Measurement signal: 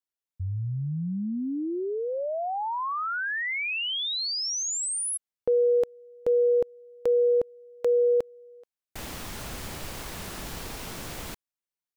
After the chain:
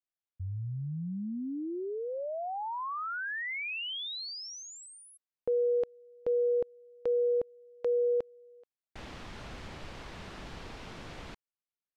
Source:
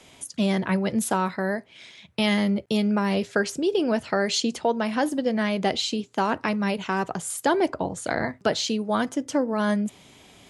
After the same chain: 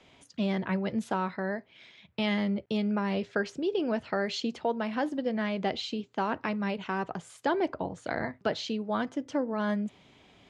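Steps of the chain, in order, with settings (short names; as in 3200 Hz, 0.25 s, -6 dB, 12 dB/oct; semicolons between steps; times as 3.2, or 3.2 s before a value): LPF 3900 Hz 12 dB/oct; gain -6 dB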